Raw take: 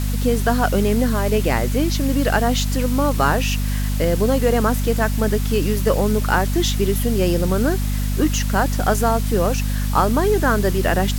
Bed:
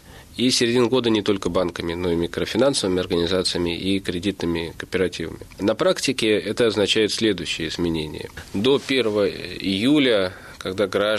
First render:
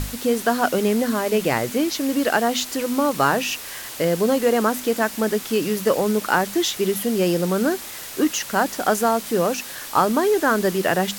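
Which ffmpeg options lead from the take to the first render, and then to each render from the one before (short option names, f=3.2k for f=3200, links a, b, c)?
-af "bandreject=f=50:t=h:w=6,bandreject=f=100:t=h:w=6,bandreject=f=150:t=h:w=6,bandreject=f=200:t=h:w=6,bandreject=f=250:t=h:w=6"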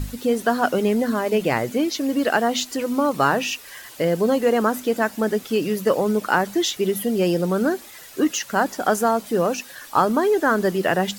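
-af "afftdn=nr=10:nf=-35"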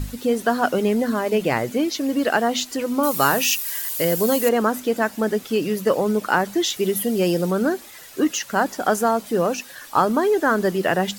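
-filter_complex "[0:a]asettb=1/sr,asplit=3[a][b][c];[a]atrim=end=3.034[d];[b]atrim=start=3.03:end=4.49,asetpts=PTS-STARTPTS,afade=t=in:d=0.004:c=qsin,afade=t=out:st=1.456:d=0.004:c=qsin,aemphasis=mode=production:type=75fm[e];[c]atrim=start=4.486[f];[d][e]acrossfade=d=0.004:c1=hsin:c2=qsin[g];[g][f]acrossfade=d=0.004:c1=qsin:c2=hsin,asettb=1/sr,asplit=3[h][i][j];[h]atrim=end=6.704[k];[i]atrim=start=6.7:end=7.51,asetpts=PTS-STARTPTS,afade=t=in:d=0.004:c=qsin,afade=t=out:st=0.806:d=0.004:c=qsin,highshelf=f=5k:g=5[l];[j]atrim=start=7.506[m];[k][l]acrossfade=d=0.004:c1=hsin:c2=qsin[n];[n][m]acrossfade=d=0.004:c1=qsin:c2=hsin"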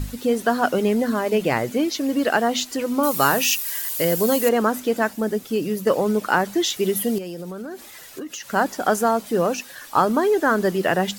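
-filter_complex "[0:a]asettb=1/sr,asplit=3[a][b][c];[a]atrim=end=5.134[d];[b]atrim=start=5.13:end=5.87,asetpts=PTS-STARTPTS,afade=t=in:d=0.004:c=qsin,afade=t=out:st=0.736:d=0.004:c=qsin,equalizer=f=1.9k:w=0.32:g=-5.5[e];[c]atrim=start=5.866[f];[d][e]acrossfade=d=0.004:c1=hsin:c2=qsin[g];[g][f]acrossfade=d=0.004:c1=qsin:c2=hsin,asettb=1/sr,asplit=3[h][i][j];[h]atrim=end=7.184[k];[i]atrim=start=7.18:end=8.48,asetpts=PTS-STARTPTS,afade=t=in:d=0.004:c=qsin,afade=t=out:st=1.296:d=0.004:c=qsin,acompressor=threshold=-29dB:ratio=10:attack=3.2:release=140:knee=1:detection=peak[l];[j]atrim=start=8.476[m];[k][l]acrossfade=d=0.004:c1=hsin:c2=qsin[n];[n][m]acrossfade=d=0.004:c1=qsin:c2=hsin"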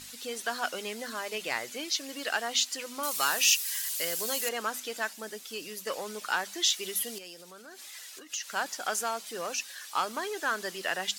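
-af "asoftclip=type=tanh:threshold=-7dB,bandpass=f=5.3k:t=q:w=0.59:csg=0"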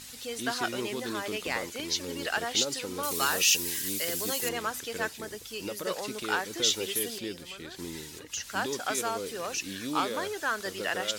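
-filter_complex "[1:a]volume=-17.5dB[a];[0:a][a]amix=inputs=2:normalize=0"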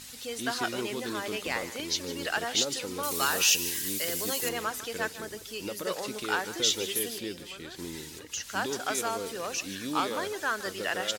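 -af "aecho=1:1:153:0.168"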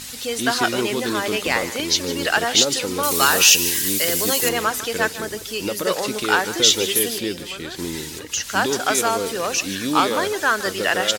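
-af "volume=11dB,alimiter=limit=-1dB:level=0:latency=1"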